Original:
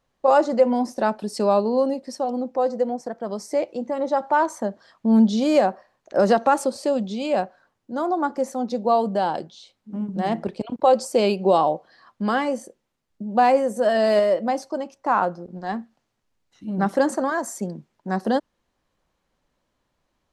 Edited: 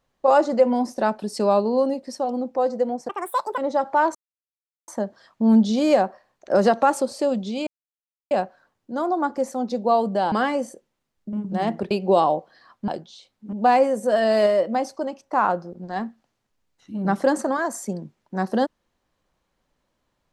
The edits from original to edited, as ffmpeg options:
-filter_complex "[0:a]asplit=10[a][b][c][d][e][f][g][h][i][j];[a]atrim=end=3.094[k];[b]atrim=start=3.09:end=3.95,asetpts=PTS-STARTPTS,asetrate=77616,aresample=44100[l];[c]atrim=start=3.946:end=4.52,asetpts=PTS-STARTPTS,afade=t=out:st=0.57:d=0.004:c=hsin,apad=pad_dur=0.73[m];[d]atrim=start=4.52:end=7.31,asetpts=PTS-STARTPTS,afade=t=in:d=0.004:c=hsin,afade=t=out:st=2.786:d=0.004:c=hsin,apad=pad_dur=0.64[n];[e]atrim=start=7.31:end=9.322,asetpts=PTS-STARTPTS,afade=t=in:d=0.004:c=hsin[o];[f]atrim=start=12.248:end=13.262[p];[g]atrim=start=9.968:end=10.552[q];[h]atrim=start=11.278:end=12.252[r];[i]atrim=start=9.318:end=9.972[s];[j]atrim=start=13.258[t];[k][l]acrossfade=d=0.004:c1=hsin:c2=hsin[u];[m][n][o]concat=n=3:v=0:a=1[v];[u][v]acrossfade=d=0.004:c1=hsin:c2=hsin[w];[w][p]acrossfade=d=0.004:c1=hsin:c2=hsin[x];[x][q]acrossfade=d=0.004:c1=hsin:c2=hsin[y];[y][r]acrossfade=d=0.004:c1=hsin:c2=hsin[z];[z][s]acrossfade=d=0.004:c1=hsin:c2=hsin[aa];[aa][t]acrossfade=d=0.004:c1=hsin:c2=hsin"

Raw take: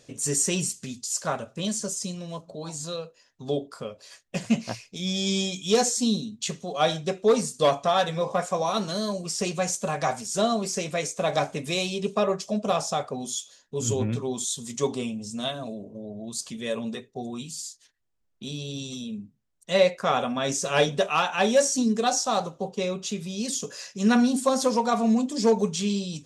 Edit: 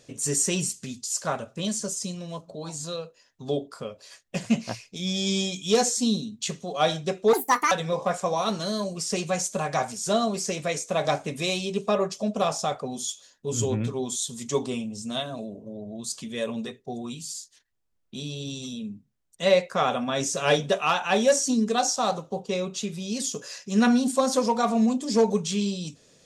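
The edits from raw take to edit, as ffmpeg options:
-filter_complex "[0:a]asplit=3[a][b][c];[a]atrim=end=7.334[d];[b]atrim=start=7.33:end=8,asetpts=PTS-STARTPTS,asetrate=76734,aresample=44100,atrim=end_sample=16981,asetpts=PTS-STARTPTS[e];[c]atrim=start=7.996[f];[d][e]acrossfade=d=0.004:c1=hsin:c2=hsin[g];[g][f]acrossfade=d=0.004:c1=hsin:c2=hsin"

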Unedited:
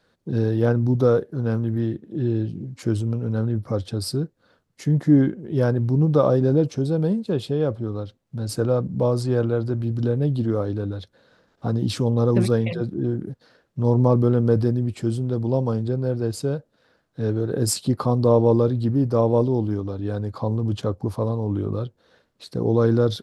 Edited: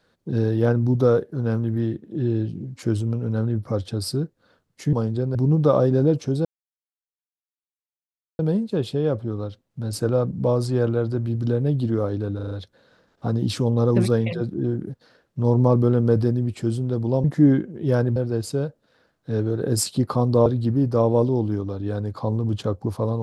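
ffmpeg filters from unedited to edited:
-filter_complex "[0:a]asplit=11[a][b][c][d][e][f][g][h][i][j][k];[a]atrim=end=4.932[l];[b]atrim=start=15.638:end=16.062[m];[c]atrim=start=5.848:end=6.95,asetpts=PTS-STARTPTS,afade=t=out:st=1.098:d=0.004:c=hsin,apad=pad_dur=1.94[n];[d]atrim=start=6.95:end=10.952,asetpts=PTS-STARTPTS,afade=t=in:d=0.004:c=hsin[o];[e]atrim=start=10.908:end=10.952[p];[f]atrim=start=10.908:end=10.952[q];[g]atrim=start=10.908:end=10.952[r];[h]atrim=start=10.908:end=15.642[s];[i]atrim=start=4.928:end=5.852[t];[j]atrim=start=16.058:end=18.362[u];[k]atrim=start=18.648[v];[l][m]acrossfade=d=0.004:c1=hsin:c2=hsin[w];[n][o]concat=n=2:v=0:a=1[x];[w][x]acrossfade=d=0.004:c1=hsin:c2=hsin[y];[y][p]acrossfade=d=0.004:c1=hsin:c2=hsin[z];[z][q]acrossfade=d=0.004:c1=hsin:c2=hsin[aa];[aa][r]acrossfade=d=0.004:c1=hsin:c2=hsin[ab];[ab][s]acrossfade=d=0.004:c1=hsin:c2=hsin[ac];[ac][t]acrossfade=d=0.004:c1=hsin:c2=hsin[ad];[ad][u]acrossfade=d=0.004:c1=hsin:c2=hsin[ae];[ae][v]acrossfade=d=0.004:c1=hsin:c2=hsin"

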